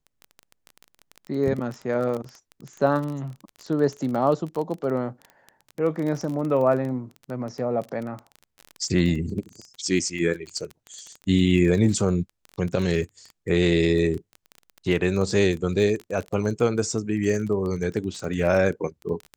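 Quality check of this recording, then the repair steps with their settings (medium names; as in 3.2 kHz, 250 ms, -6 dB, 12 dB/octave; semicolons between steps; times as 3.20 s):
crackle 22 per s -29 dBFS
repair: de-click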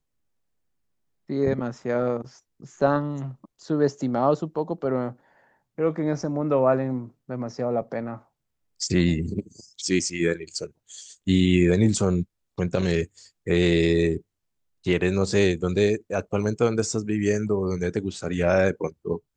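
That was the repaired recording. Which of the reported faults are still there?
nothing left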